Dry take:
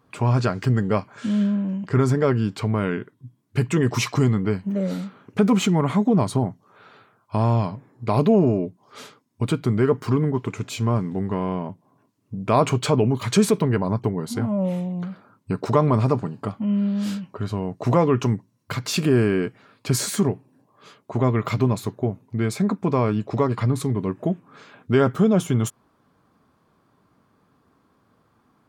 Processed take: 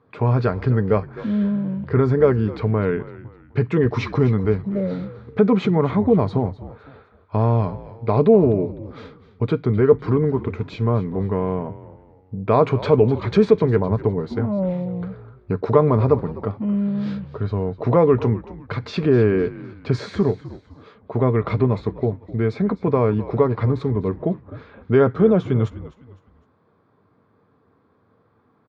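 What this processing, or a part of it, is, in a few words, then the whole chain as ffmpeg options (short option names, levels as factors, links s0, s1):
frequency-shifting delay pedal into a guitar cabinet: -filter_complex "[0:a]asplit=4[s0][s1][s2][s3];[s1]adelay=254,afreqshift=-62,volume=0.158[s4];[s2]adelay=508,afreqshift=-124,volume=0.0617[s5];[s3]adelay=762,afreqshift=-186,volume=0.024[s6];[s0][s4][s5][s6]amix=inputs=4:normalize=0,highpass=79,equalizer=f=94:t=q:w=4:g=9,equalizer=f=460:t=q:w=4:g=8,equalizer=f=2900:t=q:w=4:g=-9,lowpass=f=3700:w=0.5412,lowpass=f=3700:w=1.3066"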